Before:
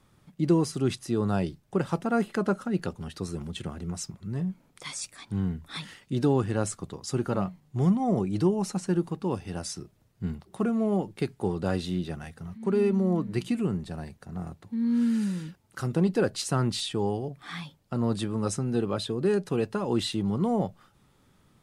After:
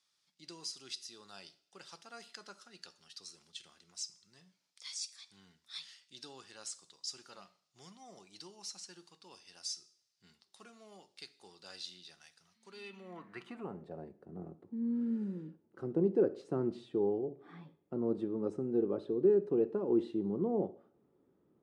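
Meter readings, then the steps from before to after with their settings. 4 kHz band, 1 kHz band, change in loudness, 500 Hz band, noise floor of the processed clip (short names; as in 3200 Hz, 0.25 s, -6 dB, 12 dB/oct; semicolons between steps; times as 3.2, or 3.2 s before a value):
-8.0 dB, -16.5 dB, -7.5 dB, -6.0 dB, -79 dBFS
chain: two-slope reverb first 0.53 s, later 1.6 s, from -26 dB, DRR 12 dB; band-pass sweep 5000 Hz -> 370 Hz, 12.68–14.1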